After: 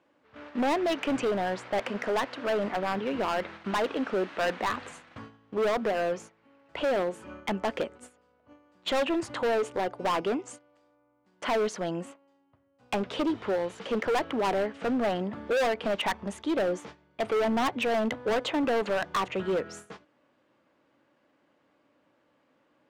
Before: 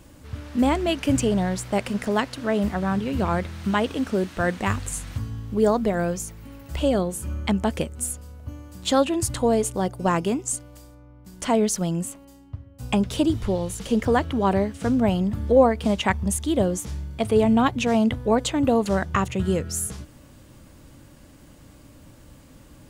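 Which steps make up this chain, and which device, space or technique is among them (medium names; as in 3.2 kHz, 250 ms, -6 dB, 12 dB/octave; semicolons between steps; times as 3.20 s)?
walkie-talkie (band-pass 410–2400 Hz; hard clipper -26.5 dBFS, distortion -5 dB; gate -46 dBFS, range -14 dB); trim +3 dB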